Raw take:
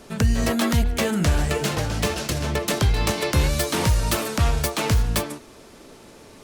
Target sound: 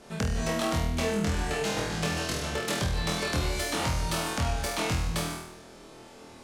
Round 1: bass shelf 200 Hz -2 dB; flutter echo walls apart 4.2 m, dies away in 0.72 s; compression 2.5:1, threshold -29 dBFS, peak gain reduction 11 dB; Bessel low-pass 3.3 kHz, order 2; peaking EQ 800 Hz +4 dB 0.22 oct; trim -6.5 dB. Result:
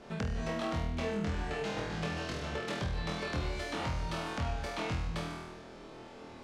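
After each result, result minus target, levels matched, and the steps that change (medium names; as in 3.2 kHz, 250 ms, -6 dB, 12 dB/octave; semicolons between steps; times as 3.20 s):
8 kHz band -9.0 dB; compression: peak gain reduction +6 dB
change: Bessel low-pass 9.9 kHz, order 2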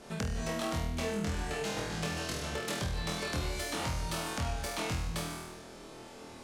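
compression: peak gain reduction +6 dB
change: compression 2.5:1, threshold -19 dBFS, peak gain reduction 5 dB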